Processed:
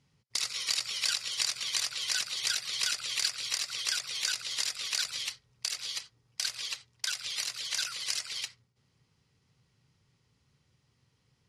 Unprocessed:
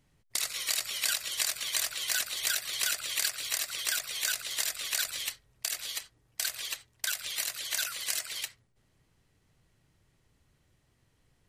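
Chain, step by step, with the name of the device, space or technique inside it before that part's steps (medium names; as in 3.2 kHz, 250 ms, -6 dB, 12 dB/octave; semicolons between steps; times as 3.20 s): car door speaker (cabinet simulation 86–9500 Hz, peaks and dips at 130 Hz +4 dB, 320 Hz -7 dB, 650 Hz -9 dB, 1.7 kHz -5 dB, 5 kHz +6 dB, 8.2 kHz -7 dB)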